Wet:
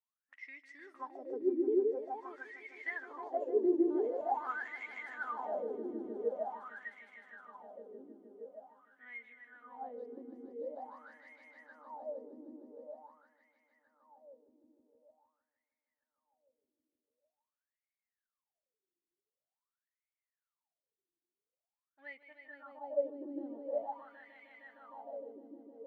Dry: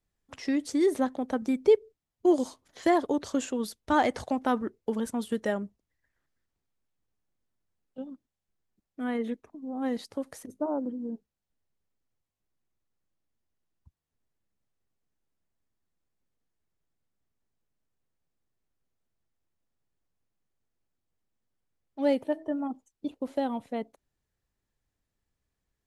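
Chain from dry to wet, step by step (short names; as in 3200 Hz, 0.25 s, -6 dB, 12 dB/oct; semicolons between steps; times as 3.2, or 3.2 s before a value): swelling echo 0.154 s, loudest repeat 5, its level -6 dB; spectral gain 10.54–10.77, 550–1800 Hz -14 dB; wah 0.46 Hz 340–2200 Hz, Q 20; gain +3.5 dB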